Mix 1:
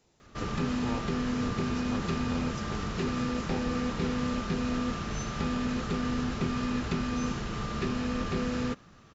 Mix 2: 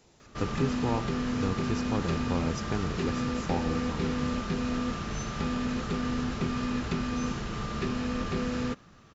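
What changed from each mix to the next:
speech +7.5 dB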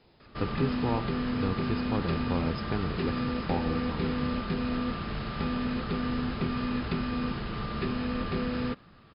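master: add brick-wall FIR low-pass 5.2 kHz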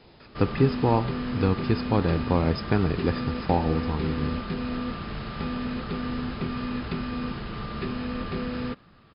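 speech +8.5 dB

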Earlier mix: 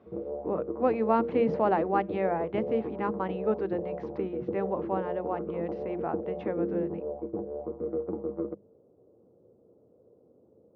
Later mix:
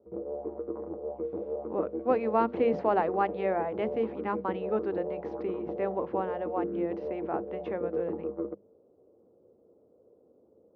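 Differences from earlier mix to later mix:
speech: entry +1.25 s; master: add peaking EQ 130 Hz -9 dB 1.2 oct

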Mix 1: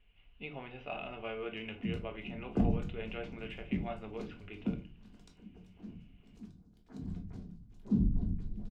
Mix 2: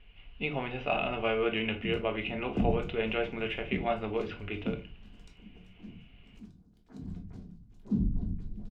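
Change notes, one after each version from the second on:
speech +11.0 dB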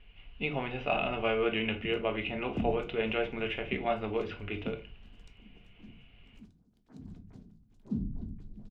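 background: send -11.0 dB

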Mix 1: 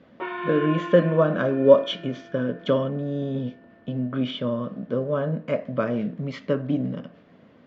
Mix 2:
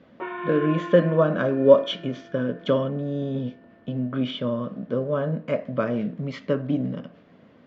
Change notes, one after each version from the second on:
background: add distance through air 280 m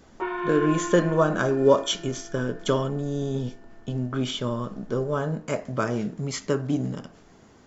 master: remove cabinet simulation 120–3400 Hz, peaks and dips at 170 Hz +4 dB, 250 Hz +4 dB, 380 Hz -6 dB, 550 Hz +8 dB, 840 Hz -8 dB, 1.4 kHz -3 dB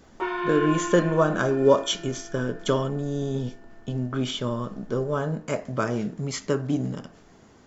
background: remove distance through air 280 m

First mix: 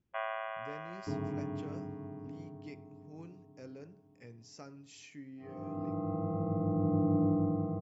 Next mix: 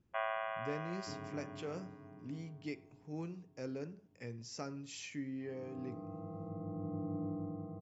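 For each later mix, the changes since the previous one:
speech +6.5 dB; second sound -11.0 dB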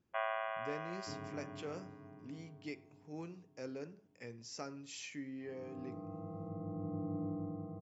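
speech: add bass shelf 170 Hz -11 dB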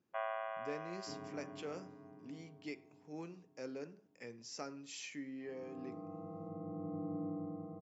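first sound: add peaking EQ 2.7 kHz -6.5 dB 2.4 oct; master: add high-pass 170 Hz 12 dB/octave

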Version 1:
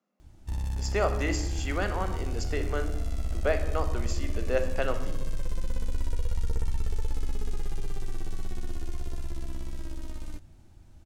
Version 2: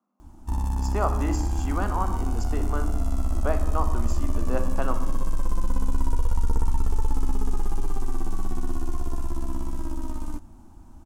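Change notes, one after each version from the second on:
background +6.5 dB; master: add graphic EQ 125/250/500/1000/2000/4000 Hz -9/+9/-8/+12/-10/-8 dB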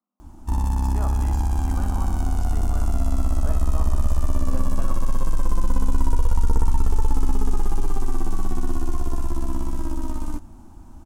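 speech -10.5 dB; background +4.0 dB

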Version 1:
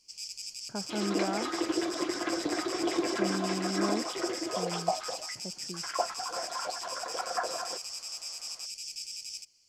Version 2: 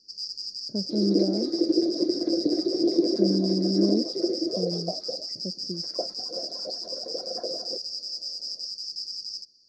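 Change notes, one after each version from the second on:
master: add FFT filter 130 Hz 0 dB, 190 Hz +9 dB, 290 Hz +9 dB, 570 Hz +6 dB, 820 Hz -17 dB, 1.2 kHz -25 dB, 2 kHz -21 dB, 3 kHz -30 dB, 4.8 kHz +11 dB, 7.5 kHz -16 dB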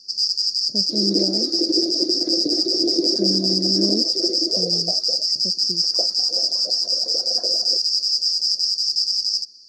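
first sound +6.5 dB; master: add treble shelf 3.3 kHz +10.5 dB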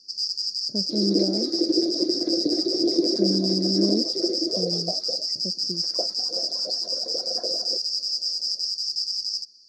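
first sound -6.5 dB

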